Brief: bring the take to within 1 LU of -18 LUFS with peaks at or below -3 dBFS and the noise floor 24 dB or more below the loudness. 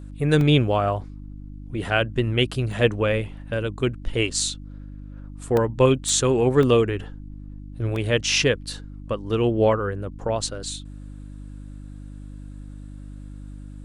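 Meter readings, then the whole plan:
dropouts 7; longest dropout 1.8 ms; hum 50 Hz; highest harmonic 300 Hz; hum level -36 dBFS; loudness -22.5 LUFS; peak level -5.5 dBFS; loudness target -18.0 LUFS
-> interpolate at 0.41/2.72/4.41/5.57/6.09/6.63/7.96 s, 1.8 ms; de-hum 50 Hz, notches 6; trim +4.5 dB; peak limiter -3 dBFS

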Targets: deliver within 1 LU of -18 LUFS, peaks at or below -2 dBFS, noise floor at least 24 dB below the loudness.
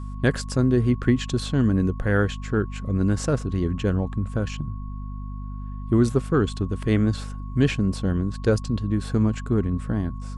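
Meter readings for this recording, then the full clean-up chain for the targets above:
hum 50 Hz; highest harmonic 250 Hz; hum level -31 dBFS; steady tone 1.1 kHz; tone level -46 dBFS; loudness -24.0 LUFS; peak level -7.0 dBFS; loudness target -18.0 LUFS
-> de-hum 50 Hz, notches 5; band-stop 1.1 kHz, Q 30; trim +6 dB; peak limiter -2 dBFS

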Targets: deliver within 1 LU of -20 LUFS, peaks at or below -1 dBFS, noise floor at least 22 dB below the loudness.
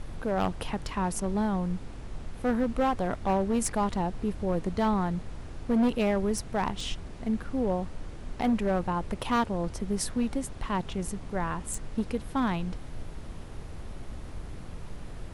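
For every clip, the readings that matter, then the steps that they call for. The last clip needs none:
clipped samples 1.3%; clipping level -20.5 dBFS; noise floor -42 dBFS; noise floor target -52 dBFS; loudness -30.0 LUFS; peak level -20.5 dBFS; loudness target -20.0 LUFS
-> clip repair -20.5 dBFS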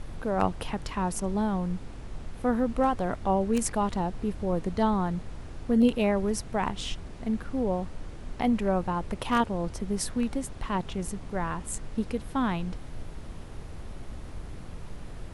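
clipped samples 0.0%; noise floor -42 dBFS; noise floor target -51 dBFS
-> noise print and reduce 9 dB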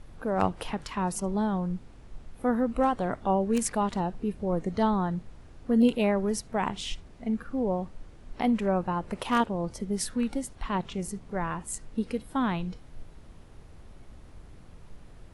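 noise floor -50 dBFS; noise floor target -52 dBFS
-> noise print and reduce 6 dB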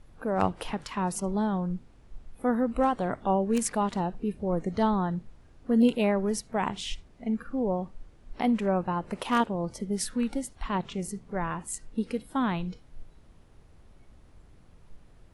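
noise floor -56 dBFS; loudness -29.5 LUFS; peak level -12.0 dBFS; loudness target -20.0 LUFS
-> trim +9.5 dB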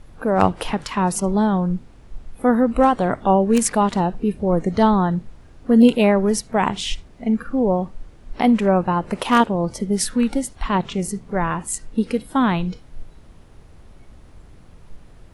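loudness -20.0 LUFS; peak level -2.5 dBFS; noise floor -46 dBFS

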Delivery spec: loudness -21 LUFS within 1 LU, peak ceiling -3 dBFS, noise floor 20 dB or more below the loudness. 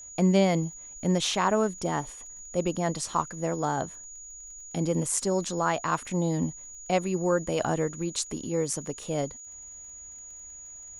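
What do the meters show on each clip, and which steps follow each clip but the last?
tick rate 33 per s; steady tone 6.8 kHz; tone level -42 dBFS; loudness -28.0 LUFS; peak level -9.5 dBFS; loudness target -21.0 LUFS
-> de-click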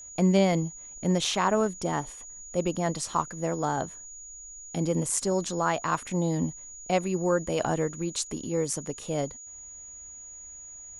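tick rate 0.091 per s; steady tone 6.8 kHz; tone level -42 dBFS
-> band-stop 6.8 kHz, Q 30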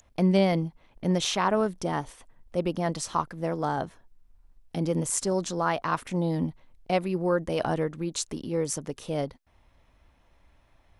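steady tone not found; loudness -28.5 LUFS; peak level -9.5 dBFS; loudness target -21.0 LUFS
-> trim +7.5 dB; peak limiter -3 dBFS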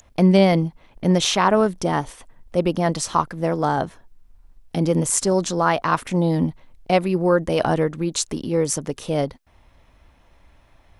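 loudness -21.0 LUFS; peak level -3.0 dBFS; noise floor -56 dBFS

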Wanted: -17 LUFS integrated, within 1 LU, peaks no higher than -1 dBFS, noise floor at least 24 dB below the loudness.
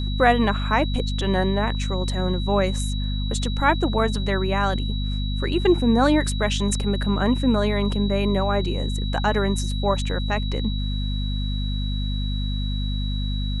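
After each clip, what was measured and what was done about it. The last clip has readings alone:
hum 50 Hz; highest harmonic 250 Hz; hum level -22 dBFS; steady tone 3.9 kHz; tone level -34 dBFS; loudness -23.0 LUFS; peak level -3.5 dBFS; loudness target -17.0 LUFS
-> hum notches 50/100/150/200/250 Hz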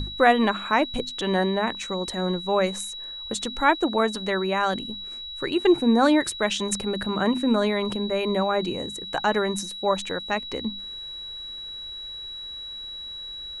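hum not found; steady tone 3.9 kHz; tone level -34 dBFS
-> band-stop 3.9 kHz, Q 30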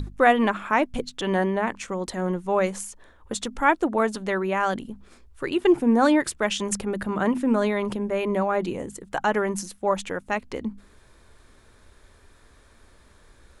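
steady tone not found; loudness -24.5 LUFS; peak level -5.0 dBFS; loudness target -17.0 LUFS
-> trim +7.5 dB; peak limiter -1 dBFS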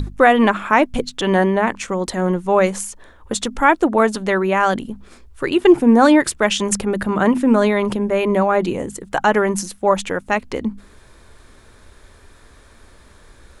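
loudness -17.5 LUFS; peak level -1.0 dBFS; noise floor -48 dBFS

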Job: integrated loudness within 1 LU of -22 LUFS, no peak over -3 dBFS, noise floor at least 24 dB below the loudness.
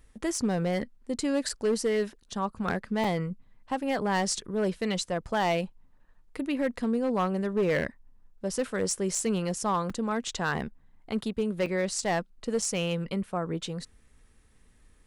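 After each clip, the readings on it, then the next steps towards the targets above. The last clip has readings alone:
clipped samples 0.9%; clipping level -20.5 dBFS; dropouts 6; longest dropout 4.0 ms; loudness -30.0 LUFS; peak level -20.5 dBFS; loudness target -22.0 LUFS
-> clip repair -20.5 dBFS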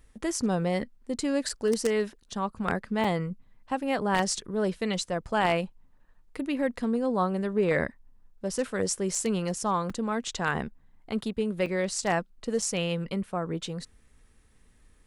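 clipped samples 0.0%; dropouts 6; longest dropout 4.0 ms
-> interpolate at 1.49/3.04/9.15/9.90/11.66/12.62 s, 4 ms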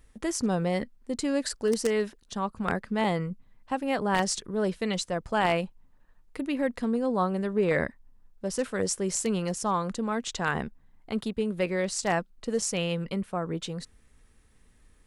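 dropouts 0; loudness -29.5 LUFS; peak level -11.5 dBFS; loudness target -22.0 LUFS
-> trim +7.5 dB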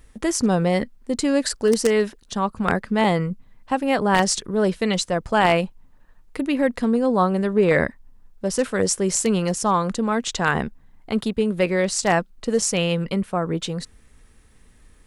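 loudness -22.0 LUFS; peak level -4.0 dBFS; noise floor -53 dBFS

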